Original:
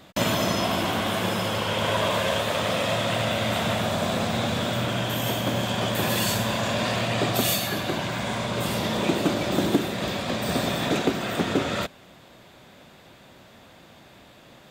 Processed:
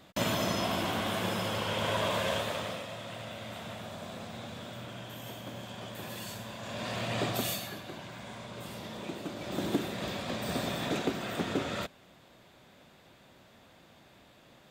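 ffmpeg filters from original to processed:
-af "volume=11.5dB,afade=t=out:st=2.34:d=0.53:silence=0.298538,afade=t=in:st=6.59:d=0.61:silence=0.316228,afade=t=out:st=7.2:d=0.62:silence=0.354813,afade=t=in:st=9.33:d=0.45:silence=0.398107"

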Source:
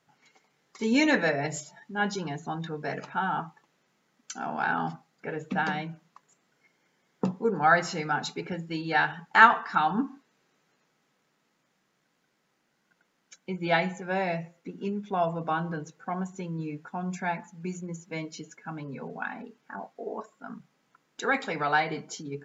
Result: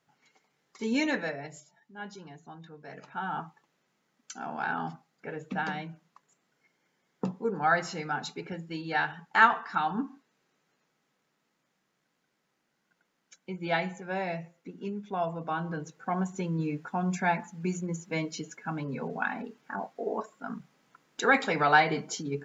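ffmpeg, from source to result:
-af "volume=13dB,afade=t=out:st=0.9:d=0.65:silence=0.334965,afade=t=in:st=2.87:d=0.5:silence=0.334965,afade=t=in:st=15.5:d=0.89:silence=0.421697"

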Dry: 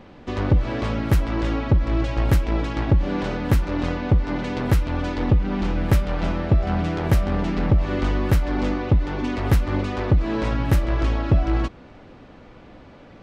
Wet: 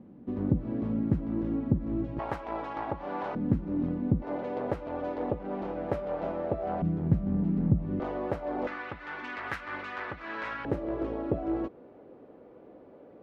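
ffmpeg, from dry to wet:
-af "asetnsamples=n=441:p=0,asendcmd='2.19 bandpass f 860;3.35 bandpass f 220;4.22 bandpass f 580;6.82 bandpass f 180;8 bandpass f 610;8.67 bandpass f 1600;10.65 bandpass f 440',bandpass=f=220:t=q:w=1.9:csg=0"

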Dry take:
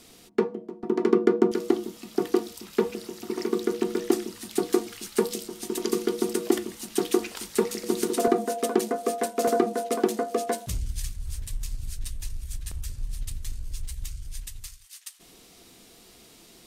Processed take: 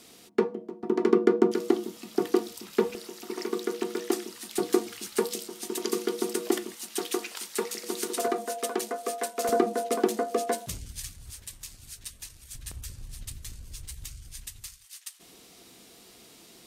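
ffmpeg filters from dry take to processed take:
-af "asetnsamples=n=441:p=0,asendcmd='2.95 highpass f 510;4.59 highpass f 160;5.18 highpass f 390;6.74 highpass f 840;9.49 highpass f 200;11.3 highpass f 440;12.55 highpass f 110',highpass=f=160:p=1"

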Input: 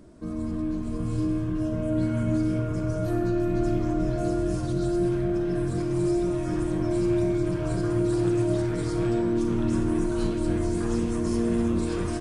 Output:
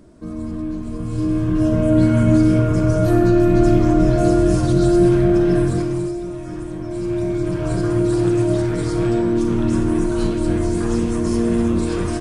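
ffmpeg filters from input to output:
-af "volume=19.5dB,afade=t=in:st=1.1:d=0.58:silence=0.398107,afade=t=out:st=5.53:d=0.6:silence=0.223872,afade=t=in:st=6.88:d=0.87:silence=0.375837"

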